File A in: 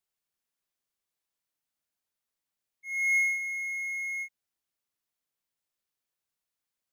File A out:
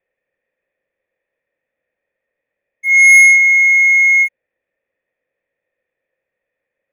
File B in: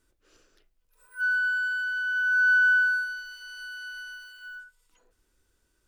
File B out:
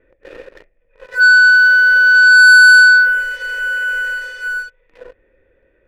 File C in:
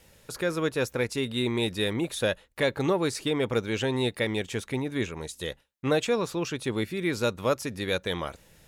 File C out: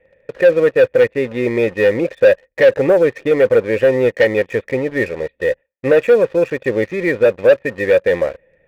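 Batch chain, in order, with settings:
formant resonators in series e
leveller curve on the samples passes 2
normalise the peak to −3 dBFS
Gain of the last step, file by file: +34.5, +34.5, +17.0 decibels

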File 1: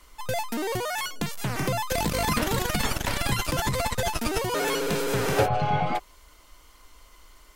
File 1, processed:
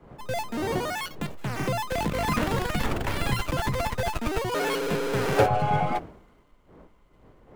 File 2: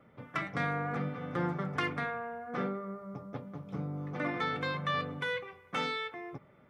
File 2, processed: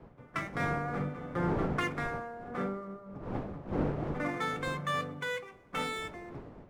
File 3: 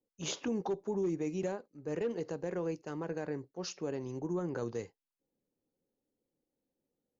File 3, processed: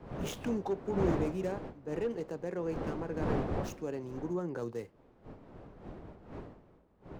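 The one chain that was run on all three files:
running median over 9 samples
wind on the microphone 460 Hz −41 dBFS
multiband upward and downward expander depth 40%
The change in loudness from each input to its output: −0.5, +0.5, +1.5 LU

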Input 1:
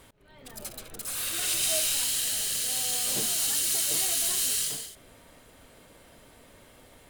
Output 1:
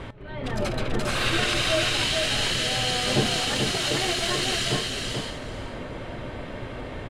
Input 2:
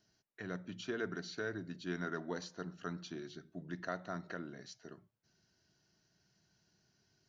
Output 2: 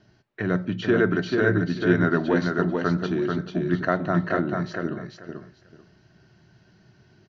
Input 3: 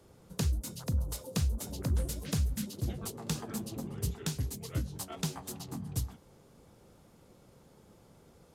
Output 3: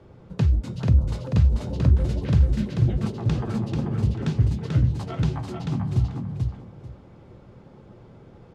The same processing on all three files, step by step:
dynamic equaliser 110 Hz, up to +5 dB, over −47 dBFS, Q 1.4
brickwall limiter −23 dBFS
low-pass filter 2,800 Hz 12 dB per octave
low-shelf EQ 370 Hz +4.5 dB
tuned comb filter 120 Hz, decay 0.16 s, harmonics odd, mix 50%
on a send: repeating echo 439 ms, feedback 19%, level −4 dB
on the sum: loudness normalisation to −24 LKFS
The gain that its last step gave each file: +21.0, +20.5, +11.5 decibels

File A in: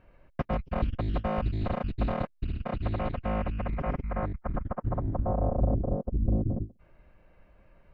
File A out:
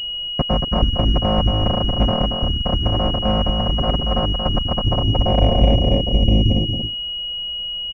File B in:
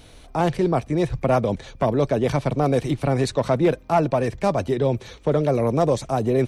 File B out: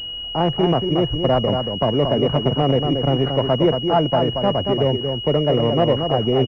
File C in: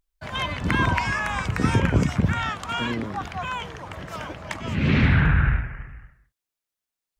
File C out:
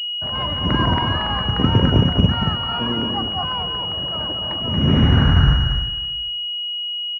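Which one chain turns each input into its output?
on a send: single-tap delay 230 ms −5.5 dB
on the sum: switching amplifier with a slow clock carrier 2,900 Hz
loudness normalisation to −19 LKFS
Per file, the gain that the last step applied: +10.5, +1.5, +4.0 decibels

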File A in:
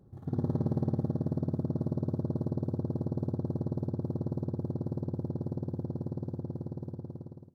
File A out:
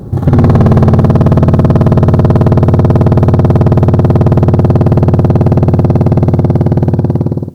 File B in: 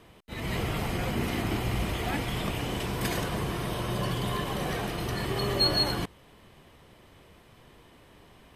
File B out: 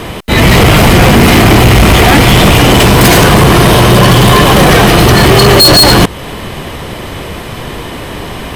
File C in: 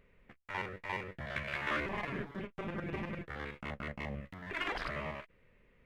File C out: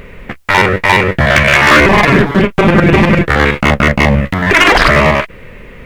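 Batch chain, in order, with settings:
in parallel at 0 dB: downward compressor, threshold −38 dBFS
on the sum: gain into a clipping stage and back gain 29 dB
normalise the peak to −1.5 dBFS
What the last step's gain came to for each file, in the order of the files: +27.5, +27.5, +27.5 decibels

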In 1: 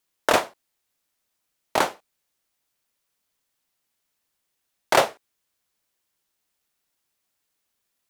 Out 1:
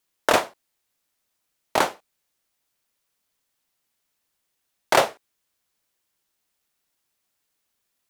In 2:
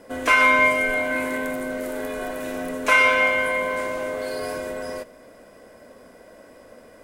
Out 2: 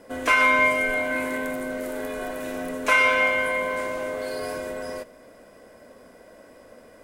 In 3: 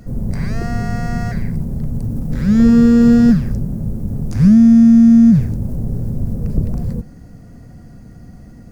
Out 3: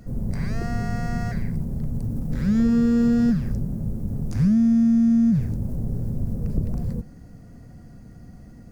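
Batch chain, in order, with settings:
downward compressor 3 to 1, threshold −11 dBFS
loudness normalisation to −23 LKFS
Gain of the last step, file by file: +1.0, −1.5, −5.5 decibels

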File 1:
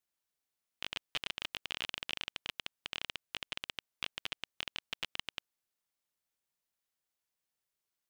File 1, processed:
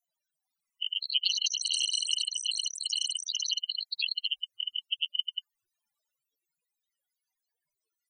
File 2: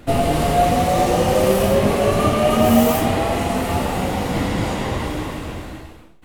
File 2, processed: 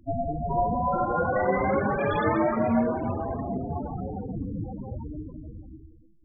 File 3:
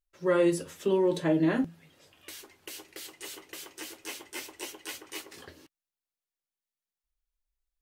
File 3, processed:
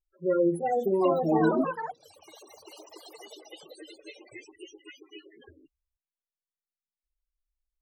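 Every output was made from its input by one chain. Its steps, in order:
spectral peaks only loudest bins 8
delay with pitch and tempo change per echo 444 ms, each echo +6 semitones, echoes 3
normalise the peak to −12 dBFS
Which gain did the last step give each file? +17.5, −9.0, 0.0 decibels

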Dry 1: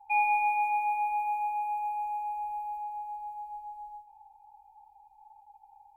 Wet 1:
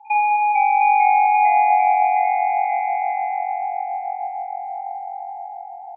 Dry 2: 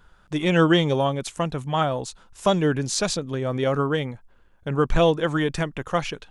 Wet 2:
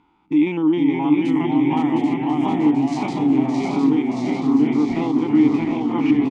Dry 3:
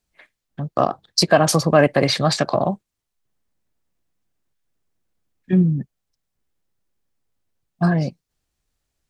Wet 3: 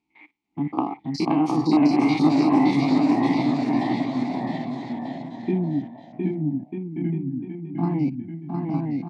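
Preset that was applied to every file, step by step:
spectrum averaged block by block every 50 ms
downward compressor, threshold −23 dBFS
formant filter u
delay with pitch and tempo change per echo 443 ms, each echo −1 semitone, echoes 3
bouncing-ball delay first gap 710 ms, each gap 0.75×, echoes 5
normalise the peak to −6 dBFS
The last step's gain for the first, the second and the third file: +18.0, +16.0, +17.5 decibels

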